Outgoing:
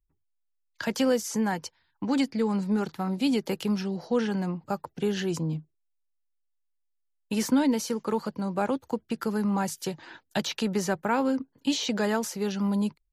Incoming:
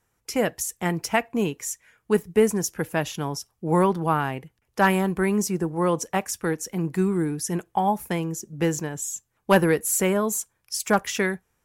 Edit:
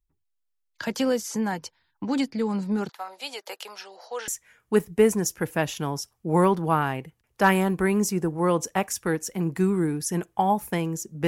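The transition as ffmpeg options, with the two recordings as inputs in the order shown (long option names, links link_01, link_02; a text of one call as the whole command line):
ffmpeg -i cue0.wav -i cue1.wav -filter_complex "[0:a]asettb=1/sr,asplit=3[link_01][link_02][link_03];[link_01]atrim=end=2.894[link_04];[link_02]atrim=start=2.89:end=4.28,asetpts=PTS-STARTPTS,afade=type=in:duration=0.004:curve=qsin,afade=type=out:start_time=1.386:duration=0.004:curve=qsin,highpass=frequency=580:width=0.5412,highpass=frequency=580:width=1.3066[link_05];[link_03]atrim=start=4.276[link_06];[link_04][link_05]acrossfade=duration=0.004:curve1=hsin:curve2=qsin[link_07];[link_07][link_06]acrossfade=duration=0.004:curve1=qsin:curve2=hsin,apad=whole_dur=11.27,atrim=end=11.27,atrim=end=4.282[link_08];[1:a]atrim=start=1.658:end=8.65[link_09];[link_08][link_09]acrossfade=duration=0.004:curve1=hsin:curve2=hsin" out.wav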